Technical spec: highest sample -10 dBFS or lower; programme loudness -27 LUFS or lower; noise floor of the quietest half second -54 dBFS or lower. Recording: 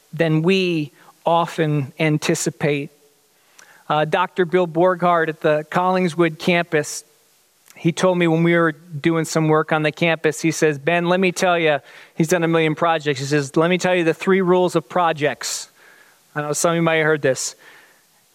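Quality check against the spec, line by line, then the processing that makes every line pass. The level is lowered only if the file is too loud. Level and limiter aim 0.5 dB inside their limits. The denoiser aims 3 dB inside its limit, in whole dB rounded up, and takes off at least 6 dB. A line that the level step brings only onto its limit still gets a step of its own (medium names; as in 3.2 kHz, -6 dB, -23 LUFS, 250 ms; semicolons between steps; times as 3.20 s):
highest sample -5.5 dBFS: fail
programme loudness -19.0 LUFS: fail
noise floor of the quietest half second -58 dBFS: pass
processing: trim -8.5 dB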